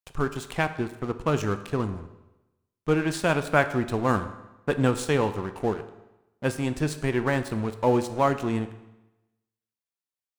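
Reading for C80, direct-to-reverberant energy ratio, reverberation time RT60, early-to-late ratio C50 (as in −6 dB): 14.0 dB, 9.5 dB, 1.0 s, 12.5 dB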